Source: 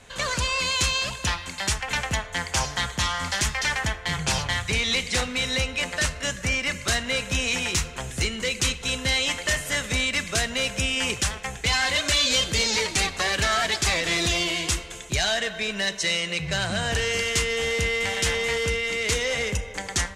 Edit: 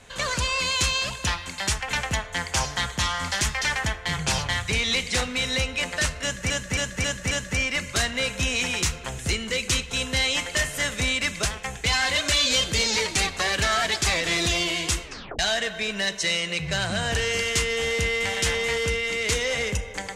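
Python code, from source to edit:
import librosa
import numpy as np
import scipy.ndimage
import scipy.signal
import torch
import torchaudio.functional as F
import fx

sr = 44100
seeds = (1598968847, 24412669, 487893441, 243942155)

y = fx.edit(x, sr, fx.repeat(start_s=6.23, length_s=0.27, count=5),
    fx.cut(start_s=10.37, length_s=0.88),
    fx.tape_stop(start_s=14.84, length_s=0.35), tone=tone)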